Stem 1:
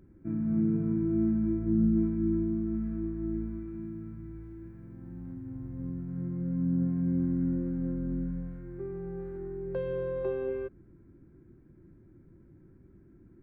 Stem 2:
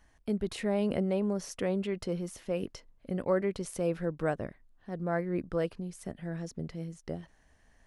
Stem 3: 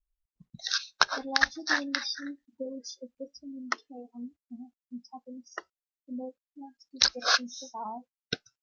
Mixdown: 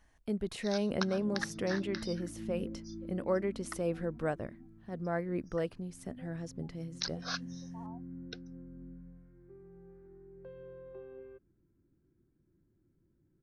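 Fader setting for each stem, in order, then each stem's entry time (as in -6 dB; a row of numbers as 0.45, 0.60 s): -16.5, -3.0, -14.0 dB; 0.70, 0.00, 0.00 s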